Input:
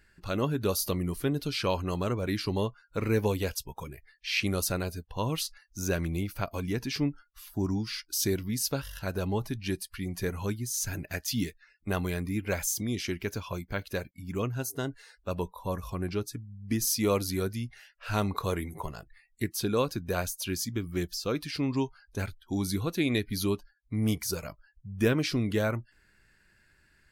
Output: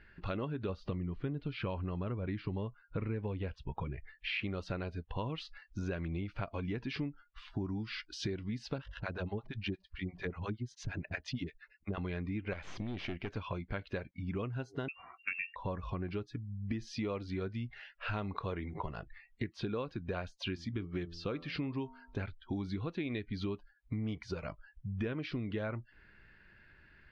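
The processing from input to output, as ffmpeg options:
-filter_complex "[0:a]asettb=1/sr,asplit=3[a][b][c];[a]atrim=end=0.694[d];[b]atrim=start=0.69:end=4.43,asetpts=PTS-STARTPTS,afade=t=in:d=0.004:c=qsin,afade=t=out:st=3.736:d=0.004:c=qsin,bass=f=250:g=6,treble=f=4k:g=-10[e];[c]atrim=start=4.426[f];[d][e]acrossfade=d=0.004:c1=hsin:c2=qsin[g];[g][f]acrossfade=d=0.004:c1=qsin:c2=hsin,asettb=1/sr,asplit=3[h][i][j];[h]atrim=end=8.784[k];[i]atrim=start=8.78:end=11.98,asetpts=PTS-STARTPTS,afade=t=in:d=0.004:c=qsin,afade=t=out:st=3.196:d=0.004:c=qsin,acrossover=split=600[l][m];[l]aeval=exprs='val(0)*(1-1/2+1/2*cos(2*PI*8.6*n/s))':c=same[n];[m]aeval=exprs='val(0)*(1-1/2-1/2*cos(2*PI*8.6*n/s))':c=same[o];[n][o]amix=inputs=2:normalize=0[p];[j]atrim=start=11.976[q];[k][p]acrossfade=d=0.004:c1=hsin:c2=qsin[r];[r][q]acrossfade=d=0.004:c1=qsin:c2=hsin,asettb=1/sr,asplit=3[s][t][u];[s]atrim=end=12.534[v];[t]atrim=start=12.53:end=13.37,asetpts=PTS-STARTPTS,afade=t=in:d=0.004:c=qsin,afade=t=out:st=0.836:d=0.004:c=qsin,aeval=exprs='(tanh(39.8*val(0)+0.65)-tanh(0.65))/39.8':c=same[w];[u]atrim=start=13.366[x];[v][w]acrossfade=d=0.004:c1=hsin:c2=qsin[y];[y][x]acrossfade=d=0.004:c1=qsin:c2=hsin,asettb=1/sr,asplit=3[z][aa][ab];[z]atrim=end=14.884[ac];[aa]atrim=start=14.88:end=15.56,asetpts=PTS-STARTPTS,afade=t=in:d=0.004:c=qsin,afade=t=out:st=0.676:d=0.004:c=qsin,lowpass=f=2.4k:t=q:w=0.5098,lowpass=f=2.4k:t=q:w=0.6013,lowpass=f=2.4k:t=q:w=0.9,lowpass=f=2.4k:t=q:w=2.563,afreqshift=-2800[ad];[ab]atrim=start=15.556[ae];[ac][ad]acrossfade=d=0.004:c1=hsin:c2=qsin[af];[af][ae]acrossfade=d=0.004:c1=qsin:c2=hsin,asettb=1/sr,asplit=3[ag][ah][ai];[ag]atrim=end=20.454[aj];[ah]atrim=start=20.45:end=22.21,asetpts=PTS-STARTPTS,afade=t=in:d=0.004:c=qsin,afade=t=out:st=1.756:d=0.004:c=qsin,bandreject=f=84.06:t=h:w=4,bandreject=f=168.12:t=h:w=4,bandreject=f=252.18:t=h:w=4,bandreject=f=336.24:t=h:w=4,bandreject=f=420.3:t=h:w=4,bandreject=f=504.36:t=h:w=4,bandreject=f=588.42:t=h:w=4,bandreject=f=672.48:t=h:w=4,bandreject=f=756.54:t=h:w=4,bandreject=f=840.6:t=h:w=4,bandreject=f=924.66:t=h:w=4,bandreject=f=1.00872k:t=h:w=4,bandreject=f=1.09278k:t=h:w=4,bandreject=f=1.17684k:t=h:w=4,bandreject=f=1.2609k:t=h:w=4,bandreject=f=1.34496k:t=h:w=4[ak];[ai]atrim=start=22.206[al];[aj][ak]acrossfade=d=0.004:c1=hsin:c2=qsin[am];[am][al]acrossfade=d=0.004:c1=qsin:c2=hsin,lowpass=f=3.4k:w=0.5412,lowpass=f=3.4k:w=1.3066,acompressor=threshold=-39dB:ratio=6,volume=4dB"

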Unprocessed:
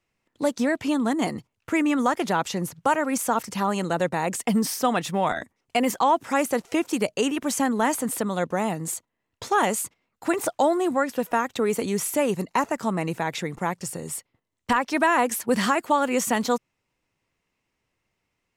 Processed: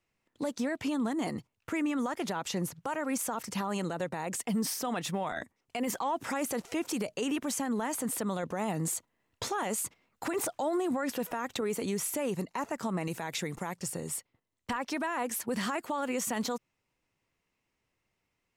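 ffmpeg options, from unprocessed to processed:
-filter_complex "[0:a]asettb=1/sr,asplit=3[a][b][c];[a]atrim=end=5.874[d];[b]atrim=start=5.87:end=7.41,asetpts=PTS-STARTPTS,afade=t=in:d=0.004:c=qsin,afade=t=out:st=1.536:d=0.004:c=qsin,acontrast=28[e];[c]atrim=start=7.406[f];[d][e]acrossfade=d=0.004:c1=hsin:c2=qsin[g];[g][f]acrossfade=d=0.004:c1=qsin:c2=hsin,asettb=1/sr,asplit=3[h][i][j];[h]atrim=end=13.034[k];[i]atrim=start=13.03:end=13.76,asetpts=PTS-STARTPTS,afade=t=in:d=0.004:c=qsin,afade=t=out:st=0.726:d=0.004:c=qsin,highshelf=f=4.1k:g=8.5[l];[j]atrim=start=13.756[m];[k][l]acrossfade=d=0.004:c1=hsin:c2=qsin[n];[n][m]acrossfade=d=0.004:c1=qsin:c2=hsin,asplit=3[o][p][q];[o]atrim=end=8.432[r];[p]atrim=start=8.428:end=11.612,asetpts=PTS-STARTPTS,volume=6.5dB[s];[q]atrim=start=11.608[t];[r][s]acrossfade=d=0.004:c1=hsin:c2=hsin[u];[u][t]acrossfade=d=0.004:c1=hsin:c2=hsin,alimiter=limit=-20.5dB:level=0:latency=1:release=66,volume=-3.5dB"

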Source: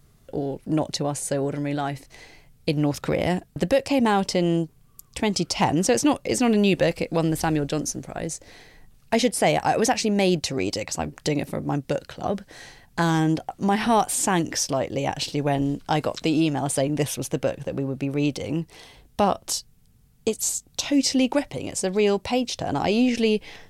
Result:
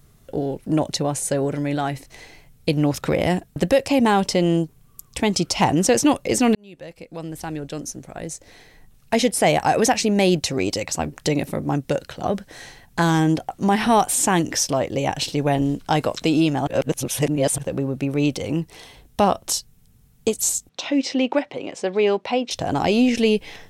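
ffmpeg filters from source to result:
-filter_complex "[0:a]asettb=1/sr,asplit=3[a][b][c];[a]atrim=end=20.694[d];[b]atrim=start=20.69:end=22.51,asetpts=PTS-STARTPTS,afade=t=in:d=0.004:c=qsin,afade=t=out:st=1.816:d=0.004:c=qsin,highpass=280,lowpass=3.3k[e];[c]atrim=start=22.506[f];[d][e]acrossfade=d=0.004:c1=hsin:c2=qsin[g];[g][f]acrossfade=d=0.004:c1=qsin:c2=hsin,asplit=4[h][i][j][k];[h]atrim=end=6.55,asetpts=PTS-STARTPTS,afade=t=out:st=6.546:d=0.004:c=hsin[l];[i]atrim=start=6.55:end=16.672,asetpts=PTS-STARTPTS,afade=t=in:d=3.02[m];[j]atrim=start=16.668:end=17.582,asetpts=PTS-STARTPTS,areverse[n];[k]atrim=start=17.578[o];[l][m]concat=n=2:v=0:a=1[p];[p][n]acrossfade=d=0.004:c1=hsin:c2=hsin[q];[q][o]acrossfade=d=0.004:c1=hsin:c2=hsin,highshelf=f=11k:g=3.5,bandreject=f=4.7k:w=20,volume=3dB"

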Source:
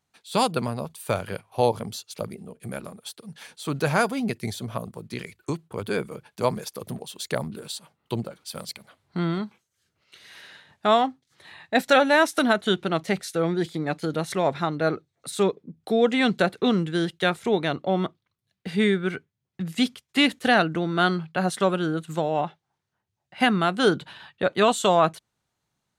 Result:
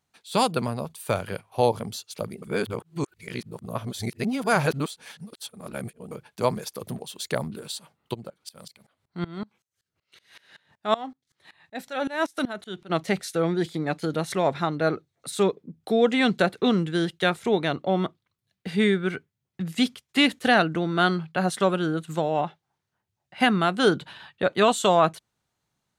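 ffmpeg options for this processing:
-filter_complex "[0:a]asplit=3[a][b][c];[a]afade=t=out:st=8.13:d=0.02[d];[b]aeval=exprs='val(0)*pow(10,-23*if(lt(mod(-5.3*n/s,1),2*abs(-5.3)/1000),1-mod(-5.3*n/s,1)/(2*abs(-5.3)/1000),(mod(-5.3*n/s,1)-2*abs(-5.3)/1000)/(1-2*abs(-5.3)/1000))/20)':c=same,afade=t=in:st=8.13:d=0.02,afade=t=out:st=12.89:d=0.02[e];[c]afade=t=in:st=12.89:d=0.02[f];[d][e][f]amix=inputs=3:normalize=0,asplit=3[g][h][i];[g]atrim=end=2.422[j];[h]atrim=start=2.418:end=6.112,asetpts=PTS-STARTPTS,areverse[k];[i]atrim=start=6.108[l];[j][k]acrossfade=d=0.004:c1=hsin:c2=hsin[m];[m][l]acrossfade=d=0.004:c1=hsin:c2=hsin"

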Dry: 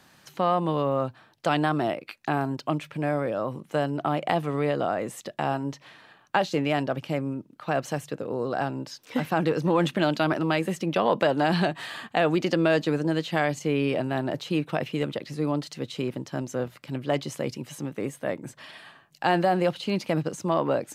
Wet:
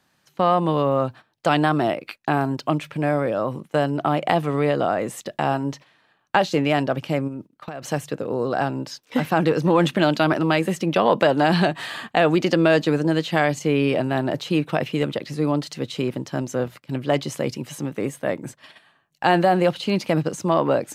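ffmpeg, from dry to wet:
-filter_complex "[0:a]asplit=3[a][b][c];[a]afade=t=out:st=7.27:d=0.02[d];[b]acompressor=threshold=-32dB:ratio=16:attack=3.2:release=140:knee=1:detection=peak,afade=t=in:st=7.27:d=0.02,afade=t=out:st=7.81:d=0.02[e];[c]afade=t=in:st=7.81:d=0.02[f];[d][e][f]amix=inputs=3:normalize=0,asettb=1/sr,asplit=3[g][h][i];[g]atrim=end=18.704[j];[h]atrim=start=18.7:end=19.7,asetpts=PTS-STARTPTS,afade=t=in:d=0.004:c=qsin,afade=t=out:st=0.996:d=0.004:c=qsin,bandreject=f=5k:w=11[k];[i]atrim=start=19.696[l];[j][k]acrossfade=d=0.004:c1=hsin:c2=qsin[m];[m][l]acrossfade=d=0.004:c1=qsin:c2=hsin,agate=range=-14dB:threshold=-43dB:ratio=16:detection=peak,volume=5dB"

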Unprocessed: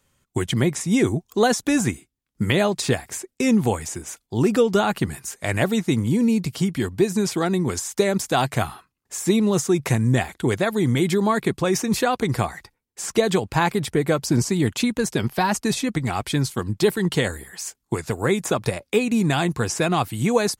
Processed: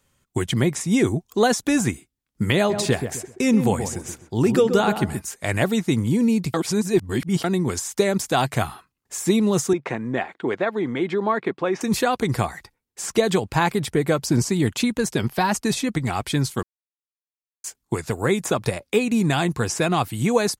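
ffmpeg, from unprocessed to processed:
-filter_complex "[0:a]asplit=3[a][b][c];[a]afade=t=out:st=2.69:d=0.02[d];[b]asplit=2[e][f];[f]adelay=129,lowpass=f=1k:p=1,volume=-6.5dB,asplit=2[g][h];[h]adelay=129,lowpass=f=1k:p=1,volume=0.33,asplit=2[i][j];[j]adelay=129,lowpass=f=1k:p=1,volume=0.33,asplit=2[k][l];[l]adelay=129,lowpass=f=1k:p=1,volume=0.33[m];[e][g][i][k][m]amix=inputs=5:normalize=0,afade=t=in:st=2.69:d=0.02,afade=t=out:st=5.2:d=0.02[n];[c]afade=t=in:st=5.2:d=0.02[o];[d][n][o]amix=inputs=3:normalize=0,asettb=1/sr,asplit=3[p][q][r];[p]atrim=end=9.734[s];[q]atrim=start=9.73:end=11.81,asetpts=PTS-STARTPTS,afade=t=in:d=0.004:c=qsin,afade=t=out:st=2.076:d=0.004:c=qsin,highpass=290,lowpass=2.3k[t];[r]atrim=start=11.806[u];[s][t]acrossfade=d=0.004:c1=hsin:c2=qsin[v];[v][u]acrossfade=d=0.004:c1=qsin:c2=hsin,asplit=5[w][x][y][z][aa];[w]atrim=end=6.542[ab];[x]atrim=start=6.538:end=7.442,asetpts=PTS-STARTPTS,areverse[ac];[y]atrim=start=7.438:end=16.63,asetpts=PTS-STARTPTS,afade=t=out:st=9.188:d=0.004:c=hsin[ad];[z]atrim=start=16.63:end=17.64,asetpts=PTS-STARTPTS,volume=0[ae];[aa]atrim=start=17.64,asetpts=PTS-STARTPTS,afade=t=in:d=0.004:c=hsin[af];[ab][ac]acrossfade=d=0.004:c1=hsin:c2=hsin[ag];[ad][ae][af]concat=n=3:v=0:a=1[ah];[ag][ah]acrossfade=d=0.004:c1=hsin:c2=hsin"

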